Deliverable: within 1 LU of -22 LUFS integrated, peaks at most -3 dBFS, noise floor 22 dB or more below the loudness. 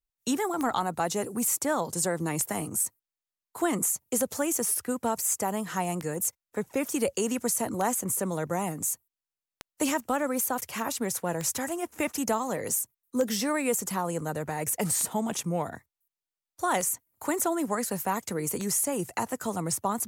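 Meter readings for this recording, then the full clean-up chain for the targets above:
clicks found 11; loudness -29.0 LUFS; peak level -12.5 dBFS; loudness target -22.0 LUFS
-> de-click; trim +7 dB

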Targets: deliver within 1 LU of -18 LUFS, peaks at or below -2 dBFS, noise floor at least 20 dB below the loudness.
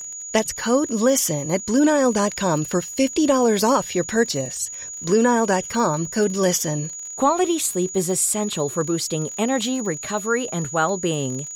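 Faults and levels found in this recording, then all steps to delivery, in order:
tick rate 32 per s; steady tone 6.8 kHz; tone level -31 dBFS; loudness -21.0 LUFS; peak level -5.5 dBFS; loudness target -18.0 LUFS
-> de-click; band-stop 6.8 kHz, Q 30; trim +3 dB

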